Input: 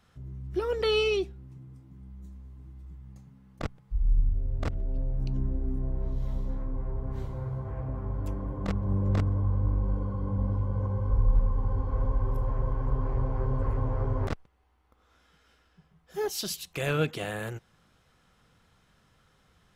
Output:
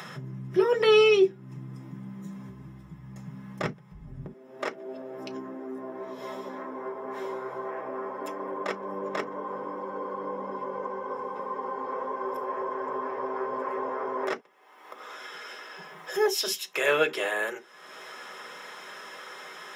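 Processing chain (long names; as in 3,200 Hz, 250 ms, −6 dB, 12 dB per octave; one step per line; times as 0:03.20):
high-pass filter 120 Hz 24 dB per octave, from 0:02.49 42 Hz, from 0:04.26 320 Hz
upward compression, threshold −34 dBFS
convolution reverb, pre-delay 3 ms, DRR 2 dB
level +2 dB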